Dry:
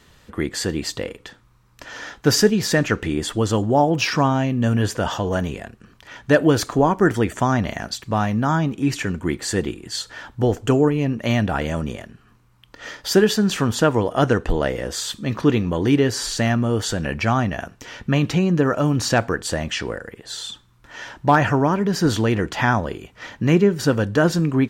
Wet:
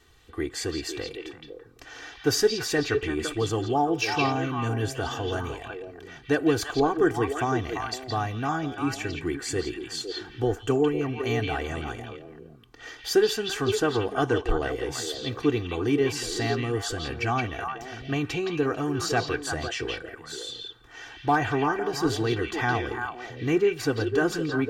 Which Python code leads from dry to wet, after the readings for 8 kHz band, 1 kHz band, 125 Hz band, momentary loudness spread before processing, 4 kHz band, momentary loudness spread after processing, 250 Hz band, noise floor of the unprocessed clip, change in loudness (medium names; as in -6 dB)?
-6.5 dB, -5.5 dB, -10.0 dB, 14 LU, -5.0 dB, 14 LU, -8.0 dB, -55 dBFS, -6.5 dB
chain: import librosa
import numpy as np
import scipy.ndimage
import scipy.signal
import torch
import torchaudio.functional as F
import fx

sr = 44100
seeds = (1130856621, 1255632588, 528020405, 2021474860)

p1 = x + 0.83 * np.pad(x, (int(2.6 * sr / 1000.0), 0))[:len(x)]
p2 = p1 + fx.echo_stepped(p1, sr, ms=169, hz=3100.0, octaves=-1.4, feedback_pct=70, wet_db=0.0, dry=0)
y = p2 * librosa.db_to_amplitude(-9.0)